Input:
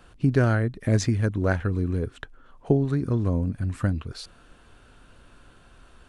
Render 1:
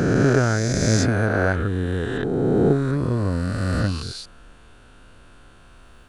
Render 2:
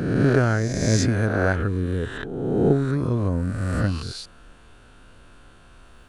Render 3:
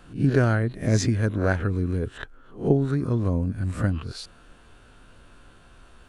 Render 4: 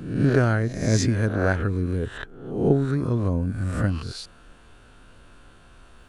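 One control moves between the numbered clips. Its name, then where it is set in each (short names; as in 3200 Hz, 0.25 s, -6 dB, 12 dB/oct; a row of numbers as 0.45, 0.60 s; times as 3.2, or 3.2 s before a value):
spectral swells, rising 60 dB in: 3.07, 1.46, 0.31, 0.7 s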